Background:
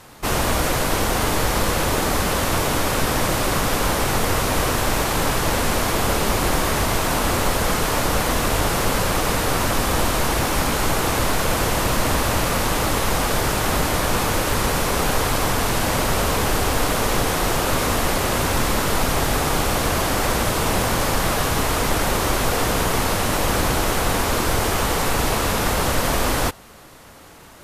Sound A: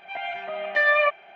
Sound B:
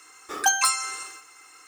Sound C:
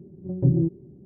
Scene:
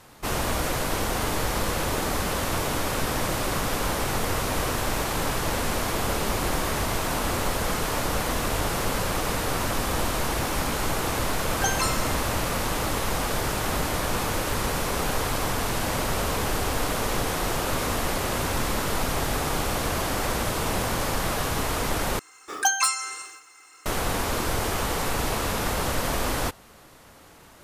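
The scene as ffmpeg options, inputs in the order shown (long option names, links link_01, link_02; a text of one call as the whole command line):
ffmpeg -i bed.wav -i cue0.wav -i cue1.wav -filter_complex "[2:a]asplit=2[link_01][link_02];[0:a]volume=-6dB[link_03];[link_01]lowpass=8100[link_04];[link_03]asplit=2[link_05][link_06];[link_05]atrim=end=22.194[link_07];[link_02]atrim=end=1.67,asetpts=PTS-STARTPTS,volume=-1dB[link_08];[link_06]atrim=start=23.856[link_09];[link_04]atrim=end=1.67,asetpts=PTS-STARTPTS,volume=-5.5dB,afade=type=in:duration=0.004:curve=hsin,afade=type=out:start_time=1.666:duration=0.004:curve=hsin,adelay=11180[link_10];[link_07][link_08]acrossfade=duration=0.004:curve1=hsin:curve2=hsin[link_11];[link_11][link_09]acrossfade=duration=0.004:curve1=hsin:curve2=hsin[link_12];[link_12][link_10]amix=inputs=2:normalize=0" out.wav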